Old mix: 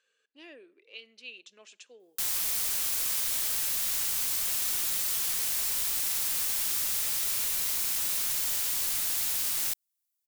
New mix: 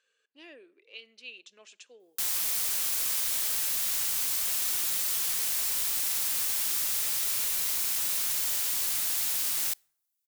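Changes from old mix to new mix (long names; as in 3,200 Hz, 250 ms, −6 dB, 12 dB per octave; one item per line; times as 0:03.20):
background: send on
master: add low-shelf EQ 190 Hz −4.5 dB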